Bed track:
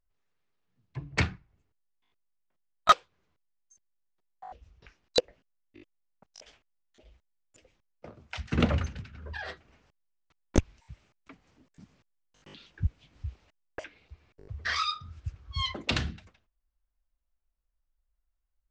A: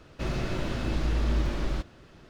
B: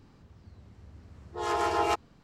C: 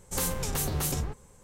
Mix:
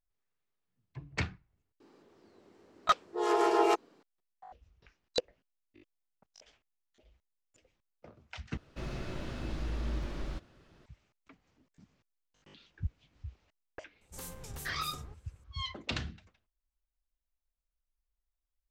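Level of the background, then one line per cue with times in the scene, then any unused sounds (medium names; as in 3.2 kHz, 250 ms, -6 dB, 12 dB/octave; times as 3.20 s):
bed track -7 dB
1.80 s: add B -2.5 dB + resonant high-pass 360 Hz, resonance Q 2.4
8.57 s: replace with A -9 dB
14.01 s: add C -15.5 dB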